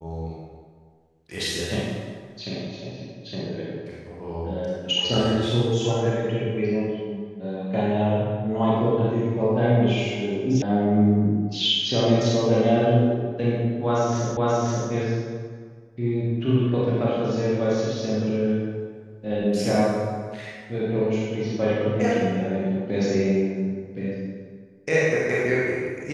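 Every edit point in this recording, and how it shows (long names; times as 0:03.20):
0:10.62: cut off before it has died away
0:14.37: the same again, the last 0.53 s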